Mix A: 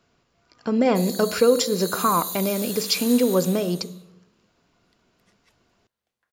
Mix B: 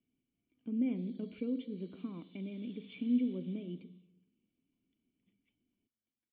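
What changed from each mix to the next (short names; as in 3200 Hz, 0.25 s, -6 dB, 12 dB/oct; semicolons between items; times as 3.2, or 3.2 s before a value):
speech -8.0 dB; master: add vocal tract filter i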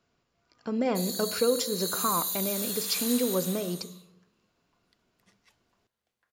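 master: remove vocal tract filter i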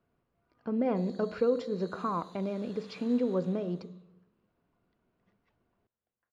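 background -4.5 dB; master: add tape spacing loss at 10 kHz 40 dB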